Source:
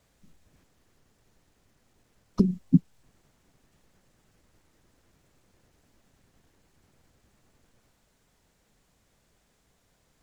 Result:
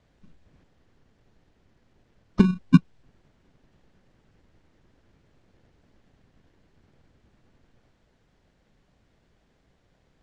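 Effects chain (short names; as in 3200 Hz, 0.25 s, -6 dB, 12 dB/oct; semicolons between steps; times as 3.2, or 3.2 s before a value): in parallel at -3.5 dB: sample-and-hold 34×; on the sum: LPF 4200 Hz 12 dB/oct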